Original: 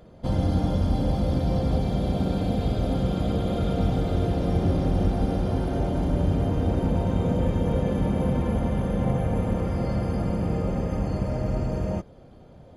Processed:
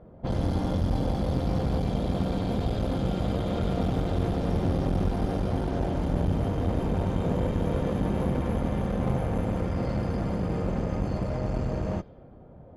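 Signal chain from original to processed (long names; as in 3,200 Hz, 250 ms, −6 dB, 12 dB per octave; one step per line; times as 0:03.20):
low-pass that shuts in the quiet parts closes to 1,200 Hz, open at −19.5 dBFS
asymmetric clip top −30.5 dBFS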